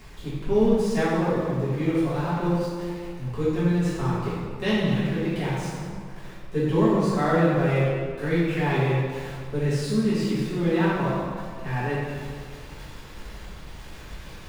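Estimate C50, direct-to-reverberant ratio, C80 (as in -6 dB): -2.5 dB, -11.5 dB, 0.0 dB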